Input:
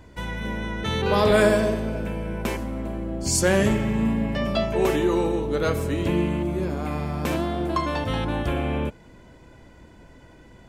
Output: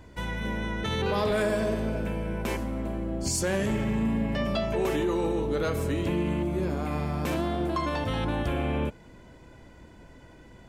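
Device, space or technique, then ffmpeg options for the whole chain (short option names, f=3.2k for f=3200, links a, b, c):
soft clipper into limiter: -af "asoftclip=type=tanh:threshold=-10.5dB,alimiter=limit=-18dB:level=0:latency=1:release=62,volume=-1.5dB"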